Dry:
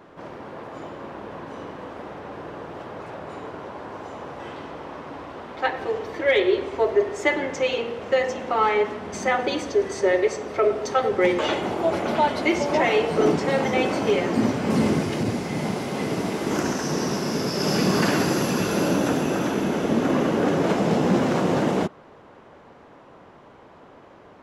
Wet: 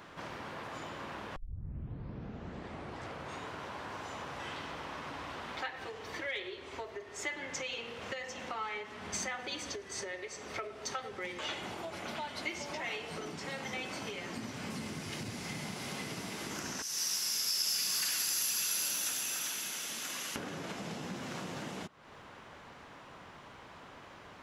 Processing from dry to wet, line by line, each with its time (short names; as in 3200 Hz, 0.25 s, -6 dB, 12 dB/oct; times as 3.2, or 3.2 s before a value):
1.36 tape start 2.10 s
16.82–20.36 pre-emphasis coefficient 0.97
whole clip: compressor 6:1, threshold -35 dBFS; passive tone stack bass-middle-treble 5-5-5; gain +12.5 dB